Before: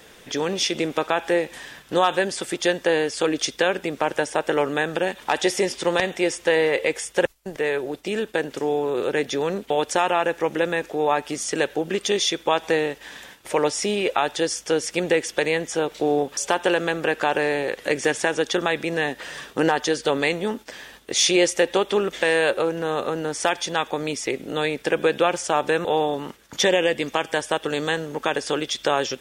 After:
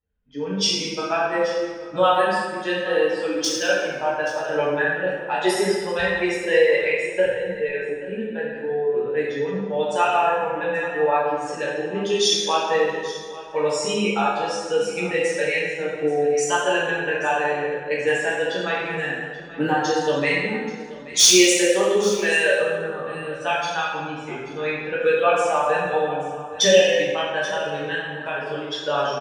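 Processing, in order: expander on every frequency bin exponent 2; treble shelf 2.5 kHz +7 dB; level-controlled noise filter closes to 1 kHz, open at -19 dBFS; in parallel at -7.5 dB: integer overflow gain 7.5 dB; on the sum: flange 0.16 Hz, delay 3.8 ms, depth 5.8 ms, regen -66%; delay 832 ms -17 dB; plate-style reverb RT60 1.6 s, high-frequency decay 0.65×, DRR -7.5 dB; trim -1 dB

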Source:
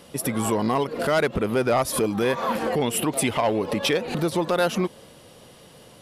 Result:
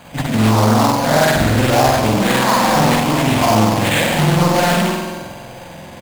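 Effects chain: treble shelf 7.7 kHz +11 dB; comb 1.2 ms, depth 92%; peak limiter -13.5 dBFS, peak gain reduction 11.5 dB; hard clipper -19 dBFS, distortion -15 dB; on a send: band-passed feedback delay 492 ms, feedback 73%, band-pass 470 Hz, level -19 dB; on the sum: spring tank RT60 1.3 s, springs 46 ms, chirp 40 ms, DRR -8 dB; careless resampling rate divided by 8×, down none, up hold; loudspeaker Doppler distortion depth 0.59 ms; trim +2.5 dB

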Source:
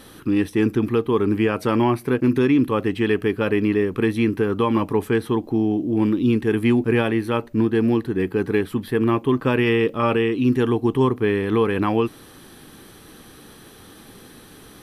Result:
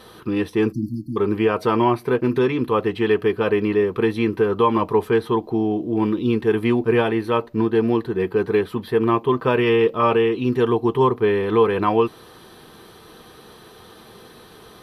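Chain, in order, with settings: comb of notches 280 Hz; spectral selection erased 0.73–1.17 s, 340–4200 Hz; graphic EQ 500/1000/4000/8000 Hz +6/+8/+6/-4 dB; trim -2.5 dB

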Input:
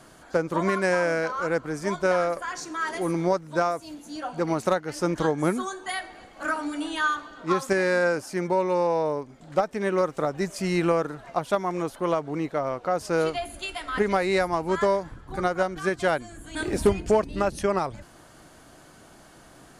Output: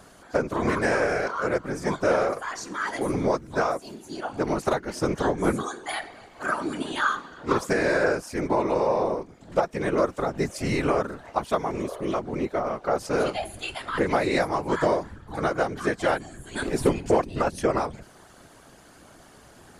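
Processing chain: spectral replace 11.81–12.11 s, 430–1700 Hz before; whisper effect

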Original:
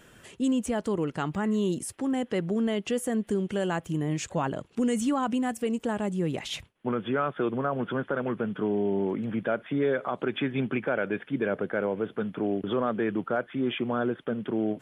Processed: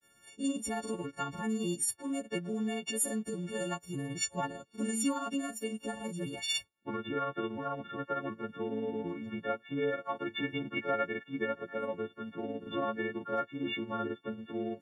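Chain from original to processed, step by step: partials quantised in pitch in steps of 4 st; granulator 123 ms, grains 18 per s, spray 25 ms, pitch spread up and down by 0 st; upward expansion 1.5:1, over -45 dBFS; trim -4 dB

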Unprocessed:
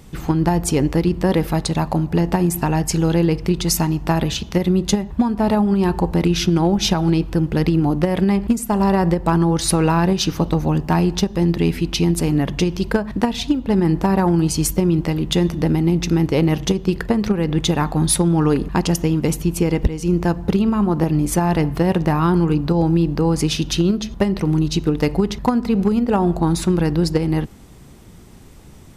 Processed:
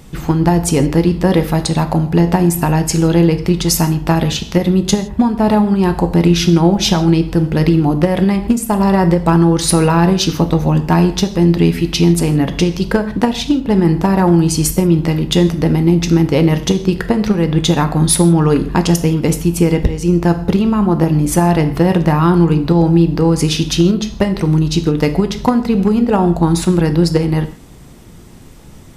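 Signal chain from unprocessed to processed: gated-style reverb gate 190 ms falling, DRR 8.5 dB; trim +4 dB

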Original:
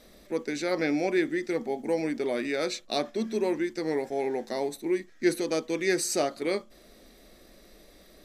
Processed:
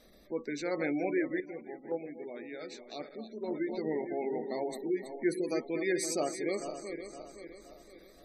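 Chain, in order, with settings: backward echo that repeats 258 ms, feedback 65%, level -8 dB; spectral gate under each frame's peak -25 dB strong; 1.40–3.54 s: gate -24 dBFS, range -9 dB; trim -5.5 dB

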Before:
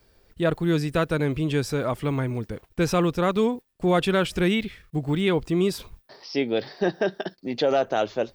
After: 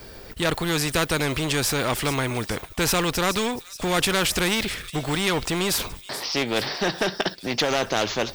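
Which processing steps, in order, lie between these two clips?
in parallel at -4 dB: hard clipper -21.5 dBFS, distortion -9 dB; on the sum: feedback echo behind a high-pass 424 ms, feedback 55%, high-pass 5.4 kHz, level -16 dB; spectrum-flattening compressor 2:1

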